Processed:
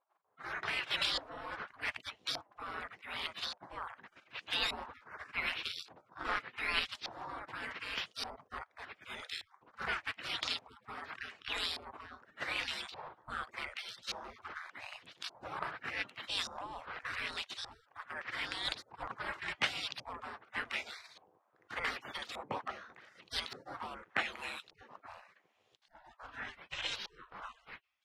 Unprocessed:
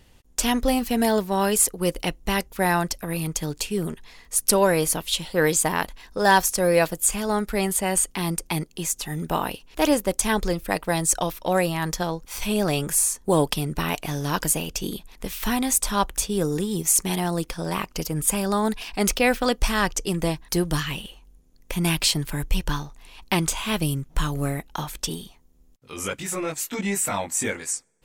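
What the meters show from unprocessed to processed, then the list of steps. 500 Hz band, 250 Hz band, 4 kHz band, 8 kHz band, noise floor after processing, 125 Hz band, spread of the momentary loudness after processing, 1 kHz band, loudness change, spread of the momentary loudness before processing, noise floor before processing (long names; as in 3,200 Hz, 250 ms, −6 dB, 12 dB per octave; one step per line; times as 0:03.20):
−25.0 dB, −30.0 dB, −8.0 dB, −31.0 dB, −73 dBFS, −29.5 dB, 15 LU, −16.0 dB, −15.5 dB, 10 LU, −54 dBFS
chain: gate on every frequency bin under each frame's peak −30 dB weak
automatic gain control gain up to 8 dB
auto-filter low-pass saw up 0.85 Hz 780–4,300 Hz
level −3.5 dB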